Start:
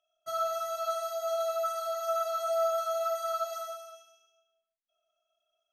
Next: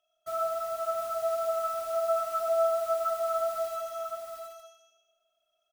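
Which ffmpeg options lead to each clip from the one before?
-filter_complex "[0:a]acrossover=split=1600[s0][s1];[s1]aeval=exprs='(mod(237*val(0)+1,2)-1)/237':c=same[s2];[s0][s2]amix=inputs=2:normalize=0,aecho=1:1:712|864:0.596|0.112,volume=1.33"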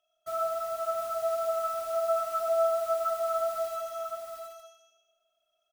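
-af anull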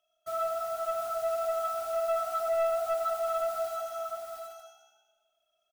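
-filter_complex "[0:a]asplit=4[s0][s1][s2][s3];[s1]adelay=181,afreqshift=63,volume=0.1[s4];[s2]adelay=362,afreqshift=126,volume=0.0398[s5];[s3]adelay=543,afreqshift=189,volume=0.016[s6];[s0][s4][s5][s6]amix=inputs=4:normalize=0,asoftclip=type=tanh:threshold=0.0841"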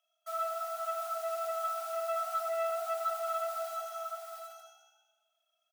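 -af "highpass=f=730:w=0.5412,highpass=f=730:w=1.3066,volume=0.891"

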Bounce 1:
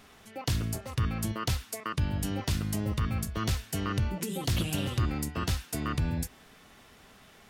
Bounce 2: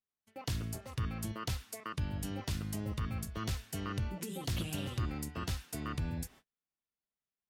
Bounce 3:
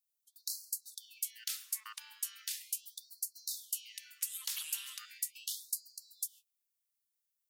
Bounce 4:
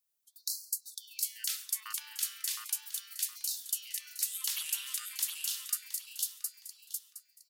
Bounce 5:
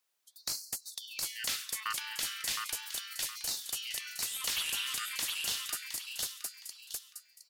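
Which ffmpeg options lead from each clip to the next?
-af "agate=range=0.01:threshold=0.00398:ratio=16:detection=peak,volume=0.447"
-af "aderivative,afftfilt=real='re*gte(b*sr/1024,810*pow(4100/810,0.5+0.5*sin(2*PI*0.38*pts/sr)))':imag='im*gte(b*sr/1024,810*pow(4100/810,0.5+0.5*sin(2*PI*0.38*pts/sr)))':win_size=1024:overlap=0.75,volume=2.37"
-af "aecho=1:1:715|1430|2145:0.631|0.158|0.0394,volume=1.5"
-filter_complex "[0:a]asplit=2[s0][s1];[s1]highpass=f=720:p=1,volume=7.94,asoftclip=type=tanh:threshold=0.168[s2];[s0][s2]amix=inputs=2:normalize=0,lowpass=f=2500:p=1,volume=0.501"

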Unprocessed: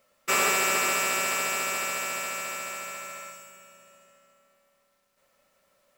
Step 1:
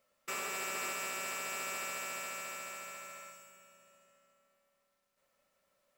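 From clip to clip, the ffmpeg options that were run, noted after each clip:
-af "alimiter=limit=0.112:level=0:latency=1:release=353,volume=0.355"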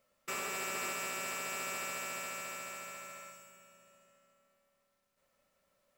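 -af "lowshelf=f=240:g=6"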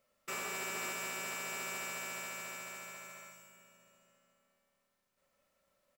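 -filter_complex "[0:a]asplit=2[s0][s1];[s1]adelay=40,volume=0.422[s2];[s0][s2]amix=inputs=2:normalize=0,volume=0.794"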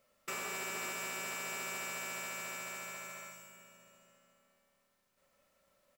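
-af "acompressor=threshold=0.00631:ratio=2,volume=1.58"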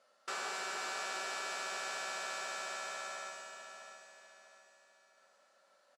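-af "aeval=exprs='(tanh(141*val(0)+0.7)-tanh(0.7))/141':c=same,highpass=380,equalizer=f=770:t=q:w=4:g=7,equalizer=f=1500:t=q:w=4:g=8,equalizer=f=2300:t=q:w=4:g=-6,equalizer=f=4400:t=q:w=4:g=5,equalizer=f=8000:t=q:w=4:g=-5,lowpass=f=9100:w=0.5412,lowpass=f=9100:w=1.3066,aecho=1:1:652|1304|1956|2608:0.335|0.127|0.0484|0.0184,volume=2.11"

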